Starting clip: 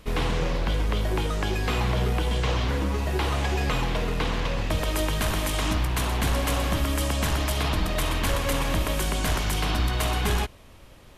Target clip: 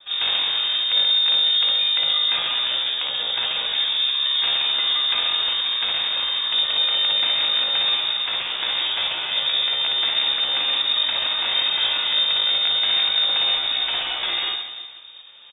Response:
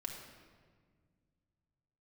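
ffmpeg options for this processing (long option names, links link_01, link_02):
-filter_complex "[0:a]asplit=2[link_01][link_02];[1:a]atrim=start_sample=2205,asetrate=48510,aresample=44100[link_03];[link_02][link_03]afir=irnorm=-1:irlink=0,volume=-12dB[link_04];[link_01][link_04]amix=inputs=2:normalize=0,adynamicequalizer=threshold=0.0126:dfrequency=870:dqfactor=1.3:tfrequency=870:tqfactor=1.3:attack=5:release=100:ratio=0.375:range=1.5:mode=cutabove:tftype=bell,aecho=1:1:40|92|159.6|247.5|361.7:0.631|0.398|0.251|0.158|0.1,atempo=0.72,lowpass=frequency=3100:width_type=q:width=0.5098,lowpass=frequency=3100:width_type=q:width=0.6013,lowpass=frequency=3100:width_type=q:width=0.9,lowpass=frequency=3100:width_type=q:width=2.563,afreqshift=-3700"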